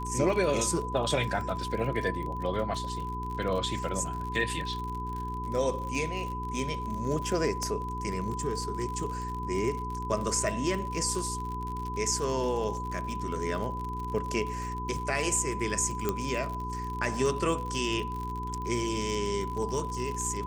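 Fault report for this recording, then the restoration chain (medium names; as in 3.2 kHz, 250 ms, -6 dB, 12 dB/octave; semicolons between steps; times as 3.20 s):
crackle 52 per s -34 dBFS
hum 60 Hz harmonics 7 -37 dBFS
whine 1 kHz -35 dBFS
7.63 s: pop -19 dBFS
16.09 s: pop -14 dBFS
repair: de-click; de-hum 60 Hz, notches 7; band-stop 1 kHz, Q 30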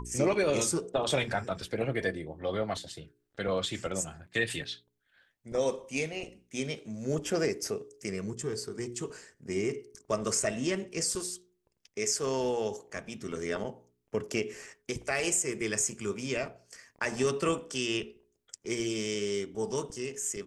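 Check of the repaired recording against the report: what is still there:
nothing left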